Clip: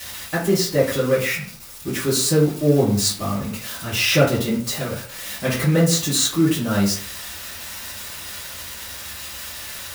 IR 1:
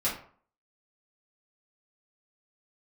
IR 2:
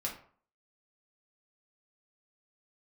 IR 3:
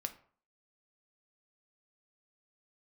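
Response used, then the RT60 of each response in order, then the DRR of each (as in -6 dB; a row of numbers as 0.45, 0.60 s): 1; 0.50, 0.50, 0.50 s; -8.5, -2.5, 7.0 dB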